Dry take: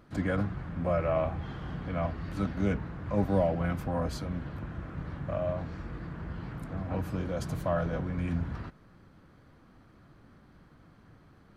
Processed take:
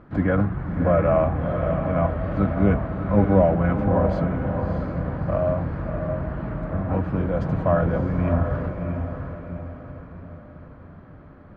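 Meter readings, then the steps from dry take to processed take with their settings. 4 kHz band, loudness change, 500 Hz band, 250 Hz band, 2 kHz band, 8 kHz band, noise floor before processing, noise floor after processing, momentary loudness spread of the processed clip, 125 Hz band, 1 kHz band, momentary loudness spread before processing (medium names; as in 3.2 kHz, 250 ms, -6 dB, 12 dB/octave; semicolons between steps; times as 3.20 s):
no reading, +9.5 dB, +10.0 dB, +10.0 dB, +7.5 dB, under -10 dB, -58 dBFS, -45 dBFS, 15 LU, +10.0 dB, +9.5 dB, 12 LU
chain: low-pass 1.7 kHz 12 dB/octave; echo that smears into a reverb 636 ms, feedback 46%, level -6 dB; trim +9 dB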